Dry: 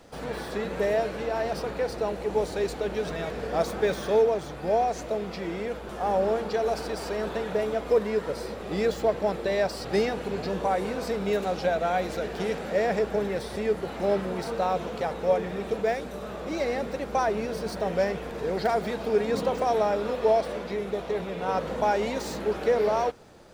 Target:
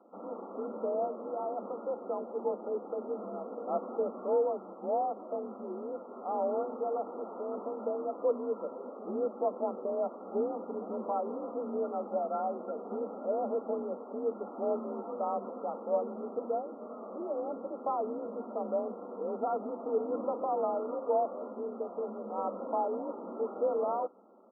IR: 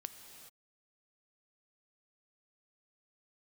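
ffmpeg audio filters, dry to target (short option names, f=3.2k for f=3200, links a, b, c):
-af "asetrate=42336,aresample=44100,afreqshift=45,afftfilt=real='re*between(b*sr/4096,190,1400)':imag='im*between(b*sr/4096,190,1400)':win_size=4096:overlap=0.75,volume=-7dB"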